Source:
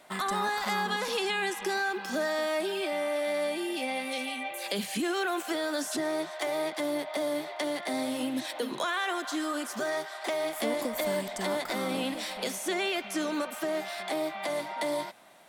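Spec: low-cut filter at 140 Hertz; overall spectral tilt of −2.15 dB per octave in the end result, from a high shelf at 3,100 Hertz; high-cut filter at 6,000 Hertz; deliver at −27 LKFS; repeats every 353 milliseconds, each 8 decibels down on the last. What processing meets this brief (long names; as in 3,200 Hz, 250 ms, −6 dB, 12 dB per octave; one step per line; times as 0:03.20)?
high-pass filter 140 Hz
low-pass filter 6,000 Hz
high-shelf EQ 3,100 Hz −7.5 dB
repeating echo 353 ms, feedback 40%, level −8 dB
level +4.5 dB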